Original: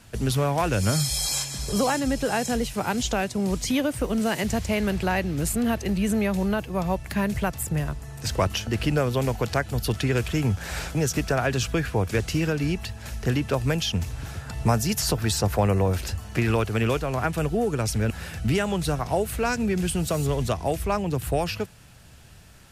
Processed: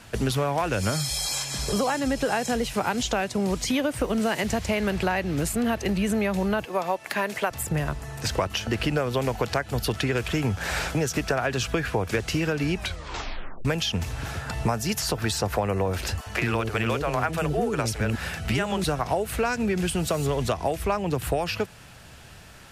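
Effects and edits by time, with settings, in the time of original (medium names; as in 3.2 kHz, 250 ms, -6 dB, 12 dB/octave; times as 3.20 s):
6.65–7.51 s: high-pass 360 Hz
12.75 s: tape stop 0.90 s
16.21–18.84 s: bands offset in time highs, lows 50 ms, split 410 Hz
whole clip: bass shelf 290 Hz -8 dB; compression, threshold -29 dBFS; treble shelf 4.6 kHz -7 dB; trim +8 dB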